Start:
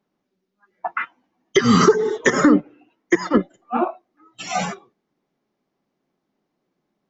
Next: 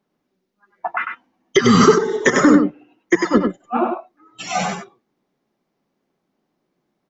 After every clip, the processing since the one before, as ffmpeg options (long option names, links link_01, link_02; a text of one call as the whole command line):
ffmpeg -i in.wav -af "aecho=1:1:98:0.531,volume=1.5dB" out.wav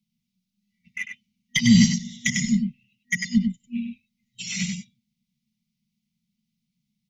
ffmpeg -i in.wav -filter_complex "[0:a]afftfilt=real='re*(1-between(b*sr/4096,240,1900))':imag='im*(1-between(b*sr/4096,240,1900))':win_size=4096:overlap=0.75,acrossover=split=150|500|2300[link_01][link_02][link_03][link_04];[link_03]adynamicsmooth=sensitivity=5.5:basefreq=830[link_05];[link_01][link_02][link_05][link_04]amix=inputs=4:normalize=0" out.wav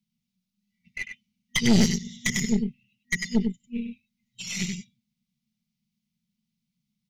ffmpeg -i in.wav -af "aeval=exprs='(tanh(6.31*val(0)+0.7)-tanh(0.7))/6.31':channel_layout=same,volume=1.5dB" out.wav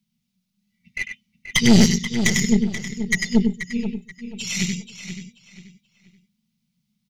ffmpeg -i in.wav -filter_complex "[0:a]asplit=2[link_01][link_02];[link_02]adelay=482,lowpass=frequency=4900:poles=1,volume=-9.5dB,asplit=2[link_03][link_04];[link_04]adelay=482,lowpass=frequency=4900:poles=1,volume=0.31,asplit=2[link_05][link_06];[link_06]adelay=482,lowpass=frequency=4900:poles=1,volume=0.31[link_07];[link_01][link_03][link_05][link_07]amix=inputs=4:normalize=0,volume=6dB" out.wav